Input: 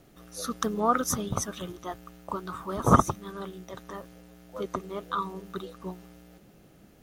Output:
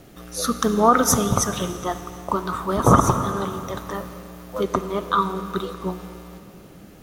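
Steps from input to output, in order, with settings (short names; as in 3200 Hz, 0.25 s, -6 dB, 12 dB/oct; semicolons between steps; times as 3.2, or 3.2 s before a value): 3.51–4.64 high shelf 12000 Hz +5.5 dB; plate-style reverb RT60 2.7 s, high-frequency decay 0.9×, DRR 10 dB; maximiser +12.5 dB; gain -2.5 dB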